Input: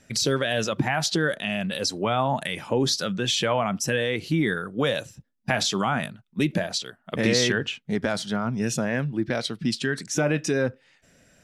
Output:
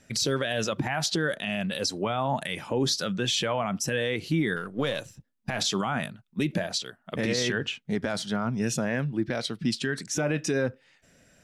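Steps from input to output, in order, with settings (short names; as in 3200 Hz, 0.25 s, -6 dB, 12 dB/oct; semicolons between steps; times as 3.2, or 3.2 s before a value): 4.56–5.59 half-wave gain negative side -3 dB; limiter -15 dBFS, peak gain reduction 9 dB; gain -1.5 dB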